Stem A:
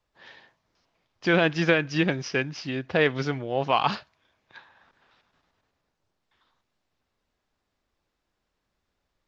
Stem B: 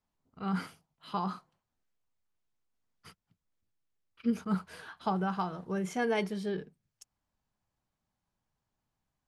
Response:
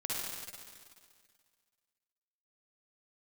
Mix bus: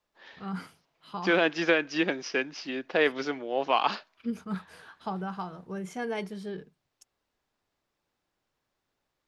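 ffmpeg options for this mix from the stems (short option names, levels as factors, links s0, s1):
-filter_complex "[0:a]highpass=f=240:w=0.5412,highpass=f=240:w=1.3066,volume=0.794[s0];[1:a]volume=0.708[s1];[s0][s1]amix=inputs=2:normalize=0"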